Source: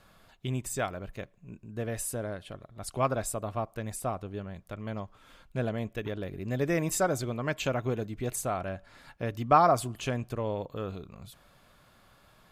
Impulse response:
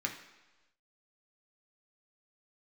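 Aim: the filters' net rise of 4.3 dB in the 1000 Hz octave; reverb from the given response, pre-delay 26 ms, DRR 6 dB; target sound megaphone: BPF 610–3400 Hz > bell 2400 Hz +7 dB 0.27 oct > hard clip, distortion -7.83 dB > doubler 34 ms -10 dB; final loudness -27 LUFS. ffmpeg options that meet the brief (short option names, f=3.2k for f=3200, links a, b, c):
-filter_complex "[0:a]equalizer=f=1k:t=o:g=7,asplit=2[a][b];[1:a]atrim=start_sample=2205,adelay=26[c];[b][c]afir=irnorm=-1:irlink=0,volume=-9.5dB[d];[a][d]amix=inputs=2:normalize=0,highpass=610,lowpass=3.4k,equalizer=f=2.4k:t=o:w=0.27:g=7,asoftclip=type=hard:threshold=-17dB,asplit=2[e][f];[f]adelay=34,volume=-10dB[g];[e][g]amix=inputs=2:normalize=0,volume=4.5dB"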